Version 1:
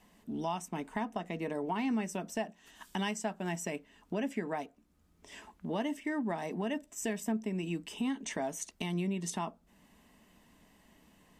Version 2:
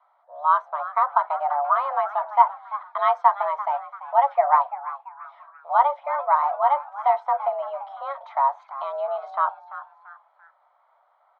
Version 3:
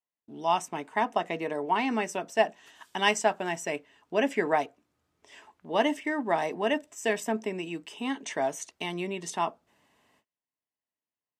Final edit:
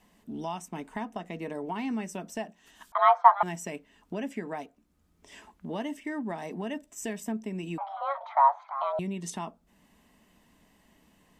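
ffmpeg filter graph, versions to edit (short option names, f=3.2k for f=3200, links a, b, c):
-filter_complex "[1:a]asplit=2[a][b];[0:a]asplit=3[c][d][e];[c]atrim=end=2.922[f];[a]atrim=start=2.918:end=3.432[g];[d]atrim=start=3.428:end=7.782[h];[b]atrim=start=7.778:end=8.992[i];[e]atrim=start=8.988[j];[f][g]acrossfade=d=0.004:c1=hsin:c2=hsin[k];[k][h]acrossfade=d=0.004:c1=hsin:c2=hsin[l];[l][i]acrossfade=d=0.004:c1=hsin:c2=hsin[m];[m][j]acrossfade=d=0.004:c1=hsin:c2=hsin"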